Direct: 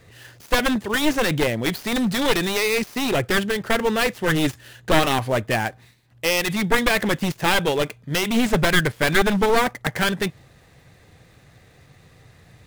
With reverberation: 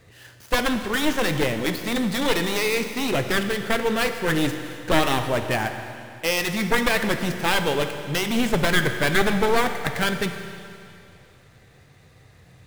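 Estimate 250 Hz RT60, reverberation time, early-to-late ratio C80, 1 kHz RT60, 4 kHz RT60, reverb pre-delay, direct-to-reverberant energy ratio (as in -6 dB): 2.6 s, 2.6 s, 8.5 dB, 2.6 s, 2.6 s, 14 ms, 6.5 dB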